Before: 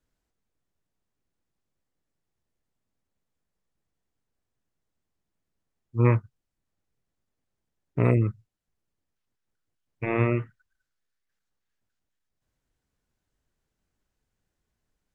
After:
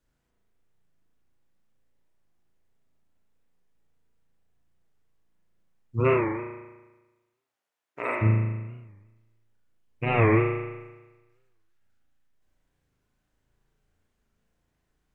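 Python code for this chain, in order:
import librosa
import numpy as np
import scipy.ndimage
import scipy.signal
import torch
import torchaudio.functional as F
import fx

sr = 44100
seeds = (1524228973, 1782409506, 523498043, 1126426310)

y = fx.highpass(x, sr, hz=fx.line((5.99, 340.0), (8.21, 890.0)), slope=12, at=(5.99, 8.21), fade=0.02)
y = fx.rev_spring(y, sr, rt60_s=1.2, pass_ms=(36,), chirp_ms=60, drr_db=-3.0)
y = fx.record_warp(y, sr, rpm=45.0, depth_cents=160.0)
y = y * 10.0 ** (1.0 / 20.0)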